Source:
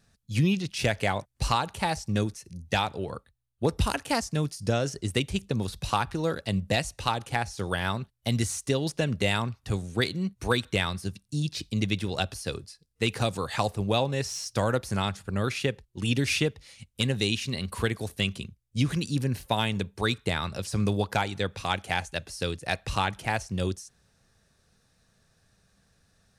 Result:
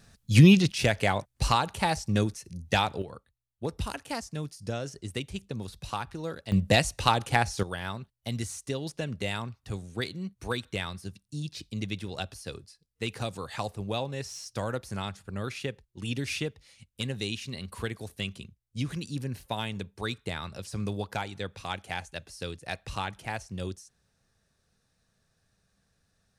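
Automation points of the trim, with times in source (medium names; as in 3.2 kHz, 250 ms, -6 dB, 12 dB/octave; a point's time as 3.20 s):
+8 dB
from 0.72 s +1 dB
from 3.02 s -7.5 dB
from 6.52 s +4 dB
from 7.63 s -6.5 dB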